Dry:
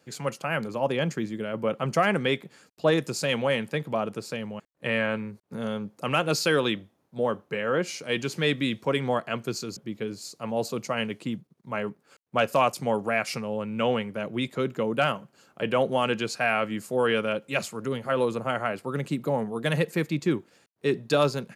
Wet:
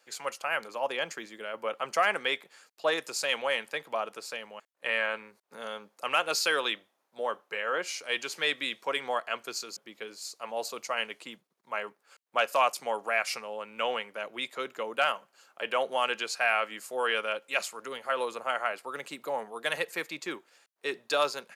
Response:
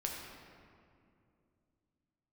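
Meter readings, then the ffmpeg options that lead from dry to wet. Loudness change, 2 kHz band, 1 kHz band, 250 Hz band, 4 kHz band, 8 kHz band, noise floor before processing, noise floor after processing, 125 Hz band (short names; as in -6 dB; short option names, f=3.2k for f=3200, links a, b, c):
-3.5 dB, 0.0 dB, -1.5 dB, -17.0 dB, 0.0 dB, 0.0 dB, -68 dBFS, -76 dBFS, under -25 dB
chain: -af "highpass=720"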